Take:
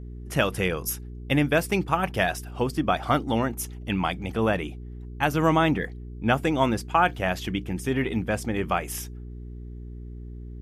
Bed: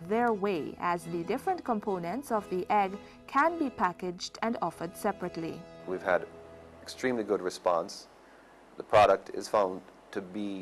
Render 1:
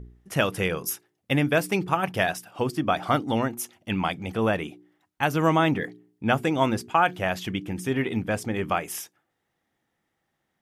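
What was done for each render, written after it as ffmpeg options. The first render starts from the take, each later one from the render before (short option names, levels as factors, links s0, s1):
-af "bandreject=f=60:t=h:w=4,bandreject=f=120:t=h:w=4,bandreject=f=180:t=h:w=4,bandreject=f=240:t=h:w=4,bandreject=f=300:t=h:w=4,bandreject=f=360:t=h:w=4,bandreject=f=420:t=h:w=4"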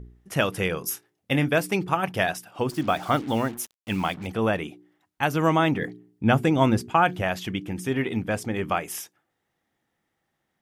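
-filter_complex "[0:a]asettb=1/sr,asplit=3[s0][s1][s2];[s0]atrim=end=0.904[s3];[s1]atrim=start=0.9:end=1.48,asetpts=PTS-STARTPTS,afade=t=in:d=0.004:c=qsin,afade=t=out:st=0.576:d=0.004:c=qsin,asplit=2[s4][s5];[s5]adelay=26,volume=0.282[s6];[s4][s6]amix=inputs=2:normalize=0,atrim=end_sample=25578[s7];[s2]atrim=start=1.476[s8];[s3][s7]acrossfade=d=0.004:c1=hsin:c2=qsin[s9];[s9][s8]acrossfade=d=0.004:c1=qsin:c2=hsin,asettb=1/sr,asplit=3[s10][s11][s12];[s10]atrim=end=2.694[s13];[s11]atrim=start=2.69:end=4.27,asetpts=PTS-STARTPTS,afade=t=in:d=0.004:c=qsin,afade=t=out:st=1.576:d=0.004:c=qsin,acrusher=bits=6:mix=0:aa=0.5[s14];[s12]atrim=start=4.266[s15];[s13][s14]acrossfade=d=0.004:c1=hsin:c2=qsin[s16];[s16][s15]acrossfade=d=0.004:c1=qsin:c2=hsin,asettb=1/sr,asplit=3[s17][s18][s19];[s17]atrim=end=5.814[s20];[s18]atrim=start=5.81:end=7.22,asetpts=PTS-STARTPTS,afade=t=in:d=0.004:c=qsin,afade=t=out:st=1.406:d=0.004:c=qsin,lowshelf=f=280:g=8[s21];[s19]atrim=start=7.216[s22];[s20][s21]acrossfade=d=0.004:c1=hsin:c2=qsin[s23];[s23][s22]acrossfade=d=0.004:c1=qsin:c2=hsin"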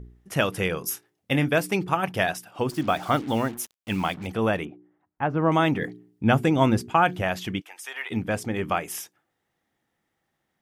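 -filter_complex "[0:a]asettb=1/sr,asplit=3[s0][s1][s2];[s0]atrim=end=4.654[s3];[s1]atrim=start=4.65:end=5.52,asetpts=PTS-STARTPTS,afade=t=in:d=0.004:c=qsin,afade=t=out:st=0.866:d=0.004:c=qsin,lowpass=1300[s4];[s2]atrim=start=5.516[s5];[s3][s4]acrossfade=d=0.004:c1=hsin:c2=qsin[s6];[s6][s5]acrossfade=d=0.004:c1=qsin:c2=hsin,asplit=3[s7][s8][s9];[s7]afade=t=out:st=7.6:d=0.02[s10];[s8]highpass=f=750:w=0.5412,highpass=f=750:w=1.3066,afade=t=in:st=7.6:d=0.02,afade=t=out:st=8.1:d=0.02[s11];[s9]afade=t=in:st=8.1:d=0.02[s12];[s10][s11][s12]amix=inputs=3:normalize=0"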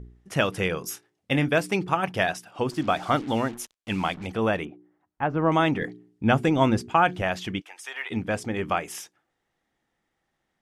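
-af "lowpass=8900,asubboost=boost=3:cutoff=52"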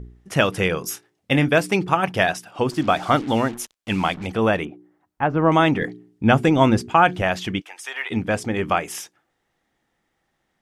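-af "volume=1.78,alimiter=limit=0.708:level=0:latency=1"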